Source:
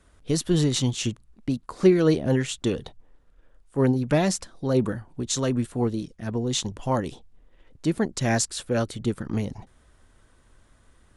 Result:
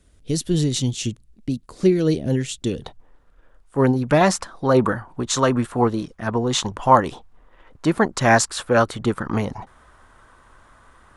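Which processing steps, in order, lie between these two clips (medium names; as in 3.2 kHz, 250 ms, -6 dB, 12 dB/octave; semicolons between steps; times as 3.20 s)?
peaking EQ 1.1 kHz -10.5 dB 1.7 oct, from 2.82 s +6.5 dB, from 4.21 s +14 dB; trim +2.5 dB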